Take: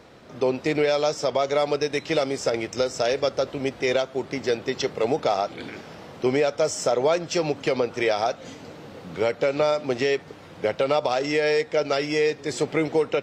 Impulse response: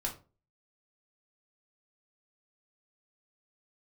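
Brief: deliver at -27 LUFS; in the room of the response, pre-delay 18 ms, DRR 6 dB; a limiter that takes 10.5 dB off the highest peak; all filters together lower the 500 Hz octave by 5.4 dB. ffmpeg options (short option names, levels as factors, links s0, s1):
-filter_complex "[0:a]equalizer=f=500:t=o:g=-6.5,alimiter=limit=0.075:level=0:latency=1,asplit=2[s0][s1];[1:a]atrim=start_sample=2205,adelay=18[s2];[s1][s2]afir=irnorm=-1:irlink=0,volume=0.376[s3];[s0][s3]amix=inputs=2:normalize=0,volume=2"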